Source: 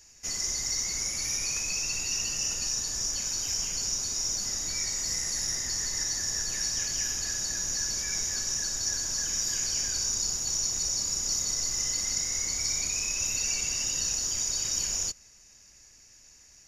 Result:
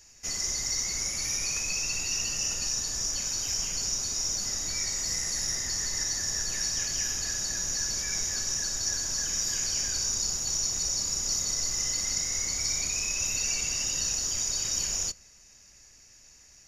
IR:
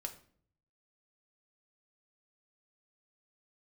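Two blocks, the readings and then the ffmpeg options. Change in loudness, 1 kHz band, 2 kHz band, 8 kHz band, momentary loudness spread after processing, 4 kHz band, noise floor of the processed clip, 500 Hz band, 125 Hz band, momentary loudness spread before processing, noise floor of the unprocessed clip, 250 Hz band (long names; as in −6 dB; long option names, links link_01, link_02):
0.0 dB, +1.5 dB, +1.0 dB, 0.0 dB, 2 LU, +0.5 dB, −55 dBFS, +1.5 dB, +1.5 dB, 2 LU, −56 dBFS, +1.0 dB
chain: -filter_complex "[0:a]asplit=2[link_01][link_02];[1:a]atrim=start_sample=2205,lowpass=6200[link_03];[link_02][link_03]afir=irnorm=-1:irlink=0,volume=-12dB[link_04];[link_01][link_04]amix=inputs=2:normalize=0"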